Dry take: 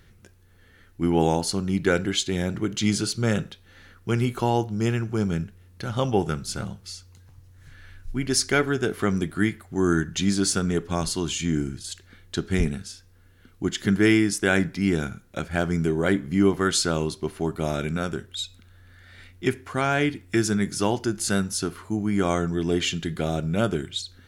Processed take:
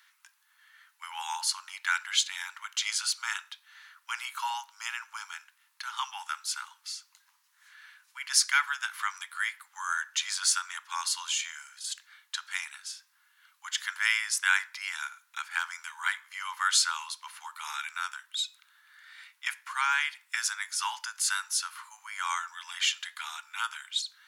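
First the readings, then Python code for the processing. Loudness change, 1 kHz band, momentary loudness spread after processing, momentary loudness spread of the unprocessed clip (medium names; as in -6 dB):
-6.0 dB, -3.0 dB, 15 LU, 11 LU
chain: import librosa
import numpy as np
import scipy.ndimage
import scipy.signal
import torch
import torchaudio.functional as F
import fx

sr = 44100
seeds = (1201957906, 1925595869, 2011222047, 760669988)

y = scipy.signal.sosfilt(scipy.signal.butter(16, 890.0, 'highpass', fs=sr, output='sos'), x)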